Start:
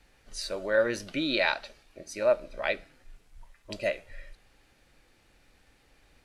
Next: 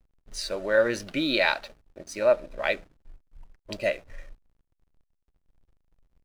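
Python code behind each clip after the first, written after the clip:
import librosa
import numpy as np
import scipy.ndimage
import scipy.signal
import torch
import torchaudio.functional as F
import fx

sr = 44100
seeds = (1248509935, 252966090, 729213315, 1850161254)

y = fx.backlash(x, sr, play_db=-48.0)
y = y * librosa.db_to_amplitude(3.0)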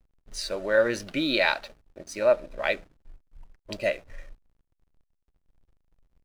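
y = x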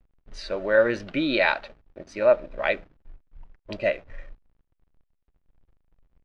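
y = scipy.signal.sosfilt(scipy.signal.butter(2, 3000.0, 'lowpass', fs=sr, output='sos'), x)
y = y * librosa.db_to_amplitude(2.5)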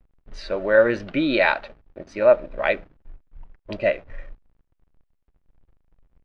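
y = fx.high_shelf(x, sr, hz=4800.0, db=-9.5)
y = y * librosa.db_to_amplitude(3.5)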